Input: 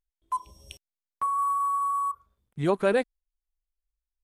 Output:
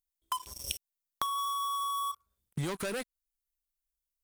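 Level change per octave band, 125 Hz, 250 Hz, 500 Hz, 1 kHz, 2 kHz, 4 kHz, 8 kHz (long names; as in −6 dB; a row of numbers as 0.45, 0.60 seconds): −3.5, −9.5, −13.5, −7.0, −7.5, +9.0, +7.0 decibels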